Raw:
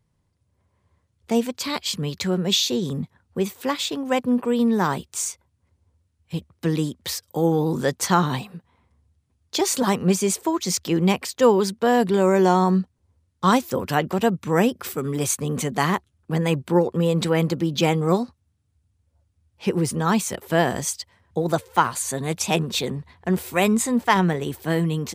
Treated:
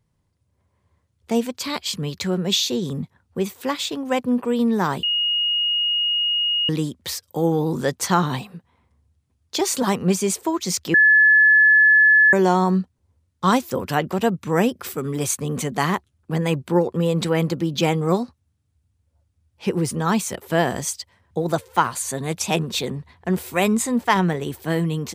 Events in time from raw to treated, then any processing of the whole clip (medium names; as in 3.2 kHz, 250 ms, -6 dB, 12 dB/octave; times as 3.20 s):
5.03–6.69 s: bleep 2.87 kHz -18 dBFS
10.94–12.33 s: bleep 1.72 kHz -10 dBFS